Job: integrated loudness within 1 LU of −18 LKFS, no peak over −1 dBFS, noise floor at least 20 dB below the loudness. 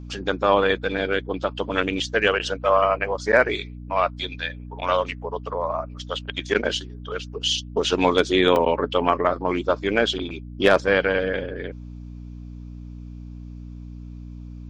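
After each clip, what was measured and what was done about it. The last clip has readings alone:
number of dropouts 1; longest dropout 1.6 ms; mains hum 60 Hz; hum harmonics up to 300 Hz; level of the hum −35 dBFS; integrated loudness −22.5 LKFS; sample peak −3.5 dBFS; target loudness −18.0 LKFS
→ repair the gap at 0:08.56, 1.6 ms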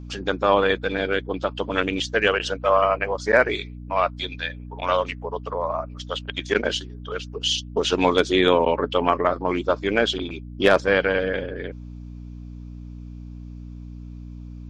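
number of dropouts 0; mains hum 60 Hz; hum harmonics up to 300 Hz; level of the hum −35 dBFS
→ hum removal 60 Hz, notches 5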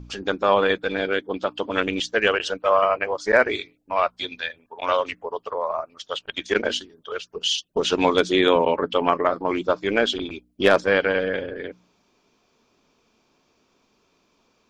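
mains hum none found; integrated loudness −23.0 LKFS; sample peak −3.5 dBFS; target loudness −18.0 LKFS
→ level +5 dB
brickwall limiter −1 dBFS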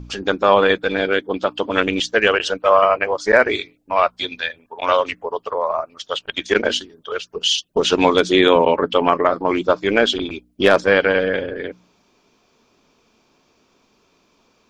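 integrated loudness −18.0 LKFS; sample peak −1.0 dBFS; background noise floor −61 dBFS

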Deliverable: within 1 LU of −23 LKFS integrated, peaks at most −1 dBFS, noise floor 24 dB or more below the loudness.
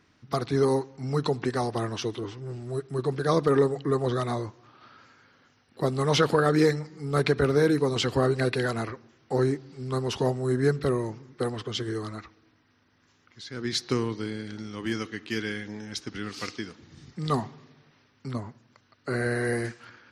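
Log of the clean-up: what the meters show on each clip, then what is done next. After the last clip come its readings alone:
integrated loudness −28.0 LKFS; sample peak −8.0 dBFS; target loudness −23.0 LKFS
→ level +5 dB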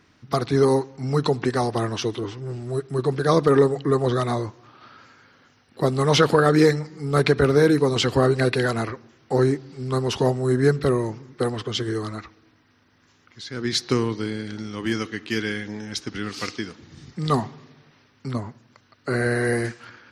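integrated loudness −23.0 LKFS; sample peak −3.0 dBFS; background noise floor −60 dBFS

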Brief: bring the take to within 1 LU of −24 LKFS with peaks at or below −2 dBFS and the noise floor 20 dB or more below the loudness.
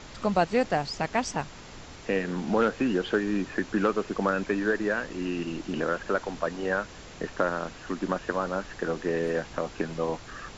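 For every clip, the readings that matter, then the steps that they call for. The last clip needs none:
background noise floor −45 dBFS; target noise floor −49 dBFS; integrated loudness −29.0 LKFS; sample peak −11.0 dBFS; target loudness −24.0 LKFS
→ noise reduction from a noise print 6 dB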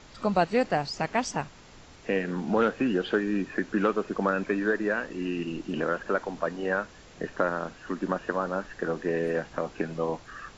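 background noise floor −51 dBFS; integrated loudness −29.0 LKFS; sample peak −11.0 dBFS; target loudness −24.0 LKFS
→ level +5 dB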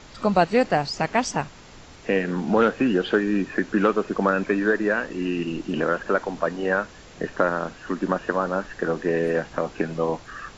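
integrated loudness −24.0 LKFS; sample peak −6.0 dBFS; background noise floor −46 dBFS

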